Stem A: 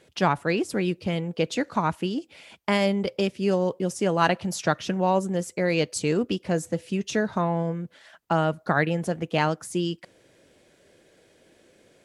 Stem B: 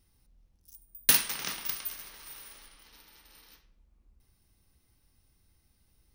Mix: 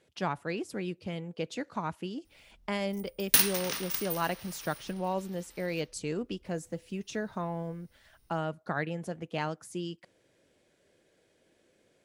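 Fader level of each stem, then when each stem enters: -10.0, 0.0 dB; 0.00, 2.25 s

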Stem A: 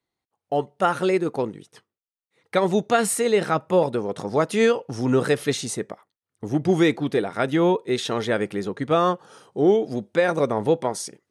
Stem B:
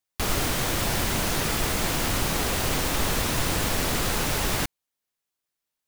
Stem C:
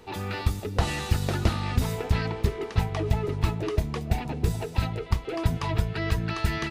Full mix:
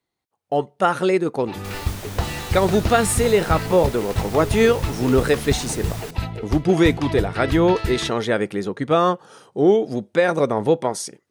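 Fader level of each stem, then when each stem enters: +2.5, -10.5, +0.5 dB; 0.00, 1.45, 1.40 s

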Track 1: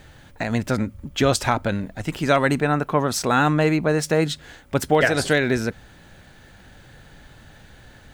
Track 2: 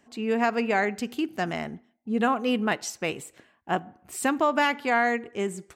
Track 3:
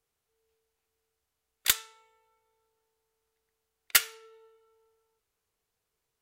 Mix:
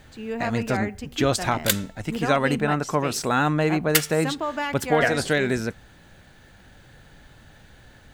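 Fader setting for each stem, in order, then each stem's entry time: -3.0, -5.0, +1.5 dB; 0.00, 0.00, 0.00 s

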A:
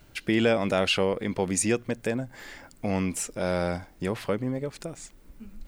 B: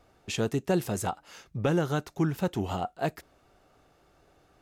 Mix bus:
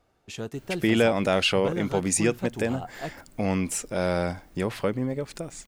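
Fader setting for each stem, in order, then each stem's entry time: +1.5, -6.0 dB; 0.55, 0.00 s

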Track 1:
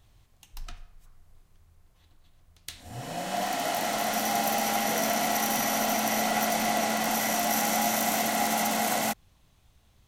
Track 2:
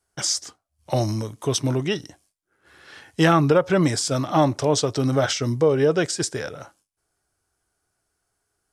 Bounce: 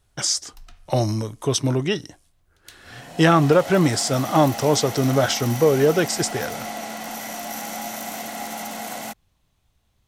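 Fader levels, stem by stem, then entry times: -5.0, +1.5 dB; 0.00, 0.00 s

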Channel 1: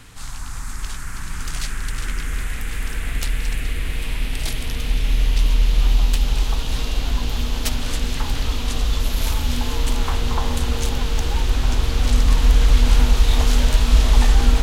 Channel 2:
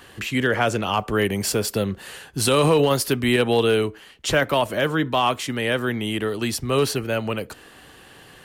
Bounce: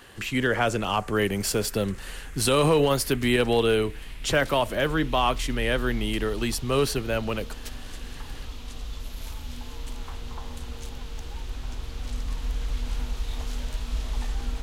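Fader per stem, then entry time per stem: -15.5, -3.0 dB; 0.00, 0.00 s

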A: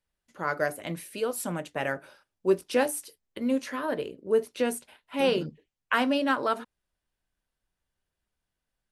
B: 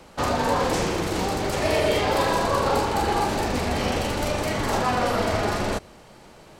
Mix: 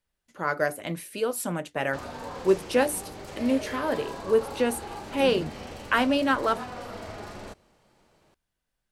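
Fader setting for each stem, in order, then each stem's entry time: +2.0, -15.5 dB; 0.00, 1.75 s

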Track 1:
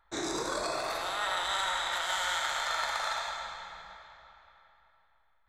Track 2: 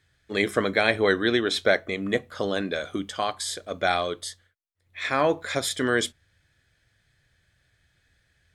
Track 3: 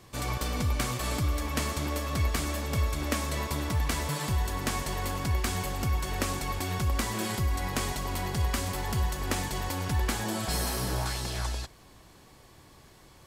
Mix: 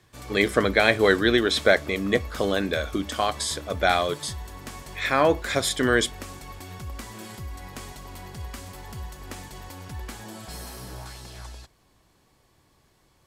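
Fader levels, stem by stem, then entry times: off, +2.5 dB, -8.5 dB; off, 0.00 s, 0.00 s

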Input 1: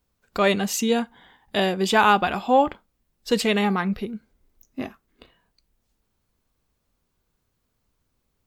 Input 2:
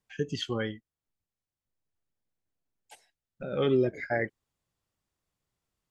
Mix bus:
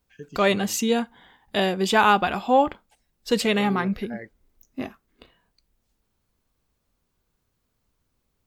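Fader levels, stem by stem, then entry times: -0.5, -10.0 dB; 0.00, 0.00 s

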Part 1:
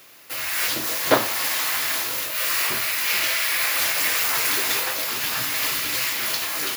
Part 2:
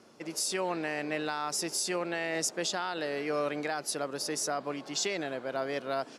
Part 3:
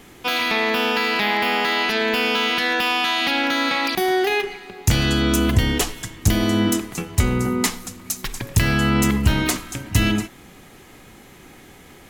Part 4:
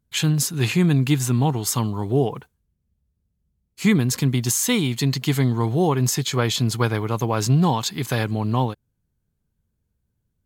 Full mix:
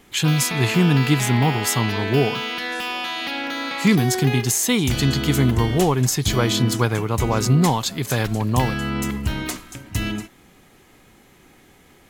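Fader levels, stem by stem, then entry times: off, -13.0 dB, -6.5 dB, +1.0 dB; off, 2.35 s, 0.00 s, 0.00 s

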